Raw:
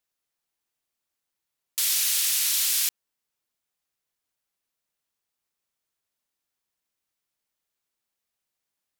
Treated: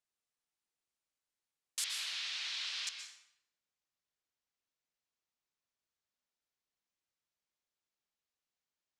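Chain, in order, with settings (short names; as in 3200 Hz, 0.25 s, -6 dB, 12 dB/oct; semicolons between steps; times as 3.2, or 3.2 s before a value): LPF 9900 Hz 24 dB/oct, from 1.84 s 4300 Hz, from 2.87 s 7300 Hz; plate-style reverb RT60 0.76 s, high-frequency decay 0.8×, pre-delay 0.11 s, DRR 6 dB; gain -8 dB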